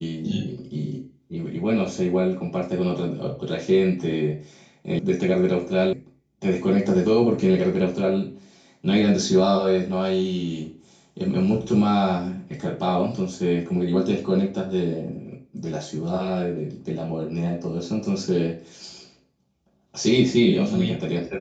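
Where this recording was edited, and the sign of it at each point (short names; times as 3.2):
4.99 sound cut off
5.93 sound cut off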